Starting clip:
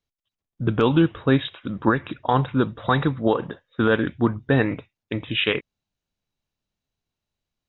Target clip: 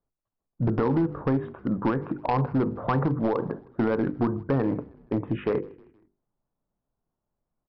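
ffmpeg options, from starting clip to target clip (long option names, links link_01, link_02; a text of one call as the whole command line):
ffmpeg -i in.wav -filter_complex "[0:a]lowpass=frequency=1200:width=0.5412,lowpass=frequency=1200:width=1.3066,equalizer=frequency=82:width=2.5:gain=-9.5,bandreject=frequency=50:width_type=h:width=6,bandreject=frequency=100:width_type=h:width=6,bandreject=frequency=150:width_type=h:width=6,bandreject=frequency=200:width_type=h:width=6,bandreject=frequency=250:width_type=h:width=6,bandreject=frequency=300:width_type=h:width=6,bandreject=frequency=350:width_type=h:width=6,bandreject=frequency=400:width_type=h:width=6,bandreject=frequency=450:width_type=h:width=6,bandreject=frequency=500:width_type=h:width=6,asplit=2[link_01][link_02];[link_02]alimiter=limit=-16dB:level=0:latency=1:release=59,volume=1.5dB[link_03];[link_01][link_03]amix=inputs=2:normalize=0,acompressor=threshold=-16dB:ratio=16,aresample=11025,asoftclip=type=hard:threshold=-16dB,aresample=44100,asplit=4[link_04][link_05][link_06][link_07];[link_05]adelay=157,afreqshift=-33,volume=-23.5dB[link_08];[link_06]adelay=314,afreqshift=-66,volume=-29.9dB[link_09];[link_07]adelay=471,afreqshift=-99,volume=-36.3dB[link_10];[link_04][link_08][link_09][link_10]amix=inputs=4:normalize=0,volume=-2dB" out.wav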